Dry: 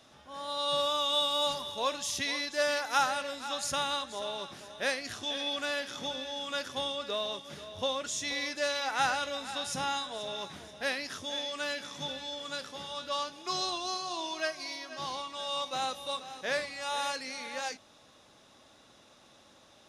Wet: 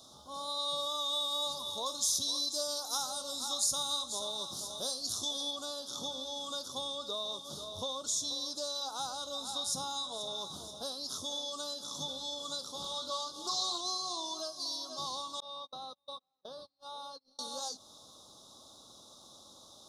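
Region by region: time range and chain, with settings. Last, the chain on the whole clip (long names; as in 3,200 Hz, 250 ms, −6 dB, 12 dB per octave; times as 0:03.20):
0:01.86–0:05.51: bass and treble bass +3 dB, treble +7 dB + double-tracking delay 24 ms −13 dB
0:12.82–0:13.81: upward compression, threshold −39 dBFS + double-tracking delay 23 ms −3 dB + highs frequency-modulated by the lows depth 0.21 ms
0:15.40–0:17.39: noise gate −37 dBFS, range −41 dB + downward compressor 3 to 1, threshold −44 dBFS + moving average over 6 samples
whole clip: downward compressor 2.5 to 1, threshold −40 dBFS; Chebyshev band-stop filter 1,200–3,700 Hz, order 3; high-shelf EQ 2,100 Hz +10 dB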